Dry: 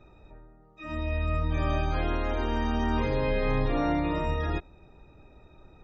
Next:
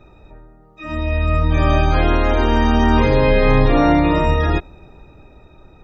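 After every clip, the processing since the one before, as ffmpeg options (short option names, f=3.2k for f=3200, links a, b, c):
-af "dynaudnorm=f=200:g=13:m=5dB,volume=8dB"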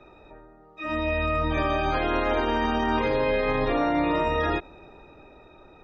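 -filter_complex "[0:a]acrossover=split=260 5100:gain=0.251 1 0.251[a][b][c];[a][b][c]amix=inputs=3:normalize=0,alimiter=limit=-16dB:level=0:latency=1:release=83"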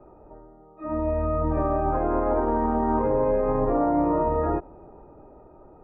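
-af "lowpass=f=1.1k:w=0.5412,lowpass=f=1.1k:w=1.3066,volume=2dB"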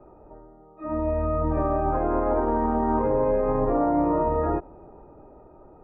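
-af anull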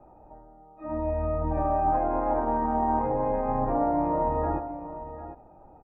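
-filter_complex "[0:a]equalizer=f=400:t=o:w=0.33:g=-10,equalizer=f=800:t=o:w=0.33:g=8,equalizer=f=1.25k:t=o:w=0.33:g=-5,asplit=2[a][b];[b]aecho=0:1:131|749:0.168|0.237[c];[a][c]amix=inputs=2:normalize=0,volume=-3dB"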